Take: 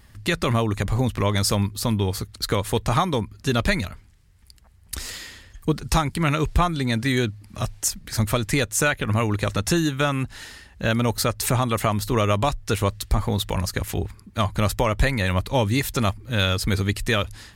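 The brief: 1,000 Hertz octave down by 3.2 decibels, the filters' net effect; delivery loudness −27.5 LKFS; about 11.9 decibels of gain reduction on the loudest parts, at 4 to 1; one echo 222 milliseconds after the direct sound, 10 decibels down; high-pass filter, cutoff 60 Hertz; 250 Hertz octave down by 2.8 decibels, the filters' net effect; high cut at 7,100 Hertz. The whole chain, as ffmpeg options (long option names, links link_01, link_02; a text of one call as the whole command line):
ffmpeg -i in.wav -af "highpass=60,lowpass=7100,equalizer=frequency=250:width_type=o:gain=-3.5,equalizer=frequency=1000:width_type=o:gain=-4,acompressor=threshold=-33dB:ratio=4,aecho=1:1:222:0.316,volume=8dB" out.wav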